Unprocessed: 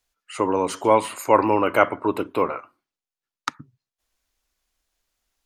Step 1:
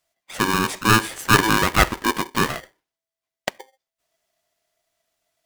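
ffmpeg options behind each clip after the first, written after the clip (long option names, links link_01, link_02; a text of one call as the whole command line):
ffmpeg -i in.wav -af "aeval=exprs='val(0)*sgn(sin(2*PI*660*n/s))':channel_layout=same,volume=1dB" out.wav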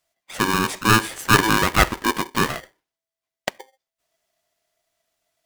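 ffmpeg -i in.wav -af anull out.wav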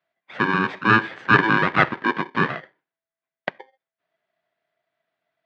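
ffmpeg -i in.wav -af "highpass=frequency=120:width=0.5412,highpass=frequency=120:width=1.3066,equalizer=frequency=160:width_type=q:width=4:gain=3,equalizer=frequency=1600:width_type=q:width=4:gain=5,equalizer=frequency=2900:width_type=q:width=4:gain=-4,lowpass=frequency=3200:width=0.5412,lowpass=frequency=3200:width=1.3066,volume=-1dB" out.wav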